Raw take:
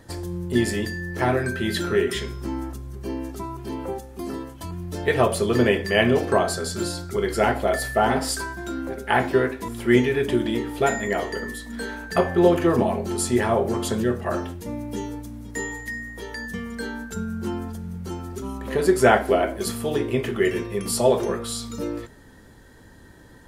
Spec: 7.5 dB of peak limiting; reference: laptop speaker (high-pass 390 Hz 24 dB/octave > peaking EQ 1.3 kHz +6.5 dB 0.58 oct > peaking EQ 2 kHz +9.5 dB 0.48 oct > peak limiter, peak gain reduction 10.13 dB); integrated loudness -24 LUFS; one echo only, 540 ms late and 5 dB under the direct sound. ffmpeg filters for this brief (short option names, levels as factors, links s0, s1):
-af "alimiter=limit=0.282:level=0:latency=1,highpass=f=390:w=0.5412,highpass=f=390:w=1.3066,equalizer=f=1300:t=o:w=0.58:g=6.5,equalizer=f=2000:t=o:w=0.48:g=9.5,aecho=1:1:540:0.562,volume=1.26,alimiter=limit=0.2:level=0:latency=1"